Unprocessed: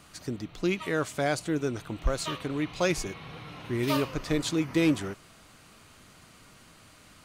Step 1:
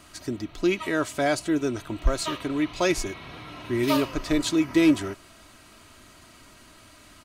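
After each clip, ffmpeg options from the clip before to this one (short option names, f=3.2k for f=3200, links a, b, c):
-af "aecho=1:1:3.1:0.5,volume=2.5dB"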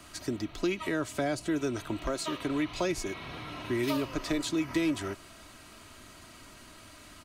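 -filter_complex "[0:a]acrossover=split=160|470[a][b][c];[a]acompressor=threshold=-41dB:ratio=4[d];[b]acompressor=threshold=-32dB:ratio=4[e];[c]acompressor=threshold=-34dB:ratio=4[f];[d][e][f]amix=inputs=3:normalize=0"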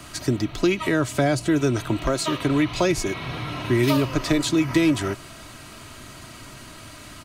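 -af "equalizer=f=130:t=o:w=0.52:g=8.5,volume=9dB"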